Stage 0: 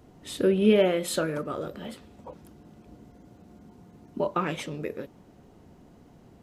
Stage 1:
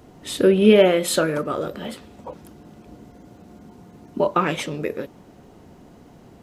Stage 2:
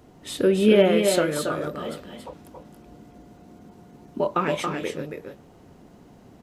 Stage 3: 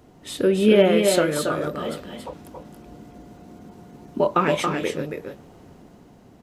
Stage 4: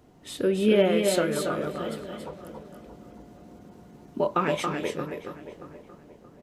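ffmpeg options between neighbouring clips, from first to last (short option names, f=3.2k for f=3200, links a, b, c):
-af "lowshelf=f=220:g=-4,volume=8dB"
-af "aecho=1:1:277|297:0.531|0.211,volume=-4dB"
-af "dynaudnorm=f=170:g=9:m=4dB"
-filter_complex "[0:a]asplit=2[a][b];[b]adelay=627,lowpass=f=1.7k:p=1,volume=-13dB,asplit=2[c][d];[d]adelay=627,lowpass=f=1.7k:p=1,volume=0.37,asplit=2[e][f];[f]adelay=627,lowpass=f=1.7k:p=1,volume=0.37,asplit=2[g][h];[h]adelay=627,lowpass=f=1.7k:p=1,volume=0.37[i];[a][c][e][g][i]amix=inputs=5:normalize=0,volume=-5dB"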